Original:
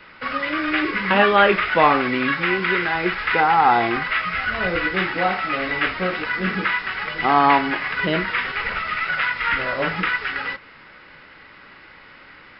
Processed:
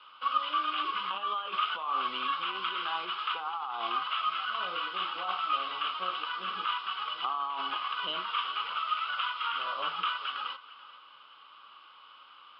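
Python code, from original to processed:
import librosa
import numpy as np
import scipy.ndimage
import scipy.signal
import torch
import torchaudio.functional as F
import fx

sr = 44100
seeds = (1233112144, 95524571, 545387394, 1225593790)

p1 = fx.over_compress(x, sr, threshold_db=-21.0, ratio=-1.0)
p2 = fx.double_bandpass(p1, sr, hz=1900.0, octaves=1.4)
y = p2 + fx.echo_single(p2, sr, ms=432, db=-18.0, dry=0)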